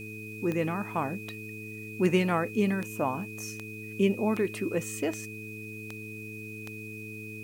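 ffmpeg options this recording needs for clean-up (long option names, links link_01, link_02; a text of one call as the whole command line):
ffmpeg -i in.wav -af "adeclick=threshold=4,bandreject=frequency=107.9:width_type=h:width=4,bandreject=frequency=215.8:width_type=h:width=4,bandreject=frequency=323.7:width_type=h:width=4,bandreject=frequency=431.6:width_type=h:width=4,bandreject=frequency=2500:width=30,agate=range=-21dB:threshold=-33dB" out.wav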